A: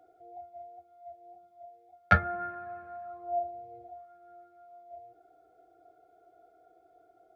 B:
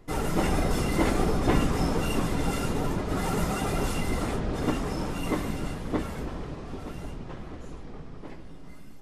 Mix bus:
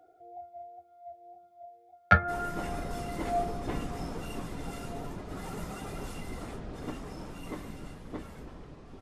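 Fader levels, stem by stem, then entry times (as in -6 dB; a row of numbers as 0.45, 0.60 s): +1.0, -11.5 dB; 0.00, 2.20 s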